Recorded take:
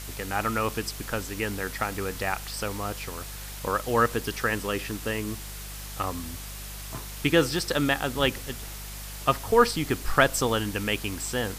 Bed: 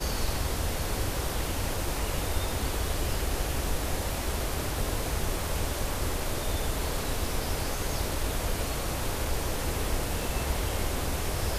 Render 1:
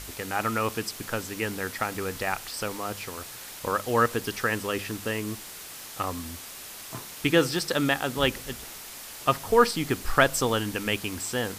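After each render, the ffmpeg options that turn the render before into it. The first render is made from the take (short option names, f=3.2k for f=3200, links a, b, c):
-af "bandreject=f=50:t=h:w=4,bandreject=f=100:t=h:w=4,bandreject=f=150:t=h:w=4,bandreject=f=200:t=h:w=4"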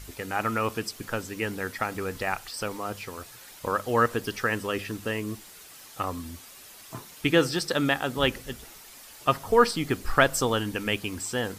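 -af "afftdn=nr=8:nf=-42"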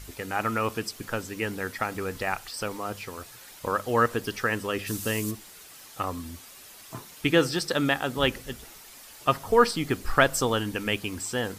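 -filter_complex "[0:a]asplit=3[a][b][c];[a]afade=t=out:st=4.86:d=0.02[d];[b]bass=f=250:g=4,treble=f=4k:g=13,afade=t=in:st=4.86:d=0.02,afade=t=out:st=5.3:d=0.02[e];[c]afade=t=in:st=5.3:d=0.02[f];[d][e][f]amix=inputs=3:normalize=0"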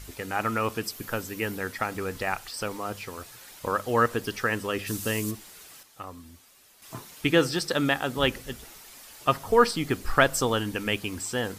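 -filter_complex "[0:a]asettb=1/sr,asplit=3[a][b][c];[a]atrim=end=0.834[d];[b]atrim=start=0.83:end=1.58,asetpts=PTS-STARTPTS,afade=t=in:d=0.004:c=qsin,afade=t=out:st=0.746:d=0.004:c=qsin,equalizer=f=13k:t=o:w=0.38:g=8.5[e];[c]atrim=start=1.576[f];[d][e]acrossfade=d=0.004:c1=hsin:c2=qsin[g];[g][f]acrossfade=d=0.004:c1=qsin:c2=hsin,asplit=3[h][i][j];[h]atrim=end=5.83,asetpts=PTS-STARTPTS,afade=t=out:st=5.63:d=0.2:c=log:silence=0.334965[k];[i]atrim=start=5.83:end=6.82,asetpts=PTS-STARTPTS,volume=-9.5dB[l];[j]atrim=start=6.82,asetpts=PTS-STARTPTS,afade=t=in:d=0.2:c=log:silence=0.334965[m];[k][l][m]concat=n=3:v=0:a=1"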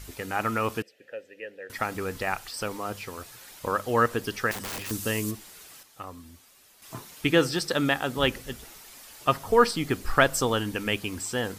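-filter_complex "[0:a]asettb=1/sr,asplit=3[a][b][c];[a]atrim=end=0.824[d];[b]atrim=start=0.82:end=1.7,asetpts=PTS-STARTPTS,afade=t=in:d=0.004:c=qsin,afade=t=out:st=0.876:d=0.004:c=qsin,asplit=3[e][f][g];[e]bandpass=f=530:t=q:w=8,volume=0dB[h];[f]bandpass=f=1.84k:t=q:w=8,volume=-6dB[i];[g]bandpass=f=2.48k:t=q:w=8,volume=-9dB[j];[h][i][j]amix=inputs=3:normalize=0[k];[c]atrim=start=1.696[l];[d][k]acrossfade=d=0.004:c1=hsin:c2=qsin[m];[m][l]acrossfade=d=0.004:c1=qsin:c2=hsin,asettb=1/sr,asplit=3[n][o][p];[n]atrim=end=4.514[q];[o]atrim=start=4.51:end=4.91,asetpts=PTS-STARTPTS,afade=t=in:d=0.004:c=qsin,afade=t=out:st=0.396:d=0.004:c=qsin,aeval=exprs='(mod(29.9*val(0)+1,2)-1)/29.9':c=same[r];[p]atrim=start=4.906[s];[q][r]acrossfade=d=0.004:c1=hsin:c2=qsin[t];[t][s]acrossfade=d=0.004:c1=qsin:c2=hsin"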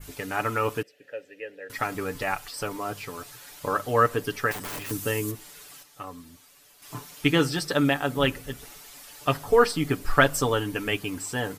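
-af "aecho=1:1:6.9:0.6,adynamicequalizer=threshold=0.00708:dfrequency=4900:dqfactor=0.79:tfrequency=4900:tqfactor=0.79:attack=5:release=100:ratio=0.375:range=2.5:mode=cutabove:tftype=bell"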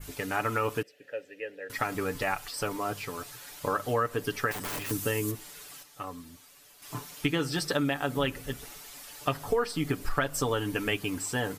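-af "acompressor=threshold=-24dB:ratio=6"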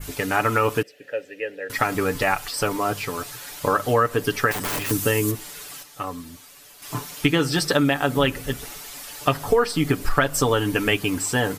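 -af "volume=8.5dB"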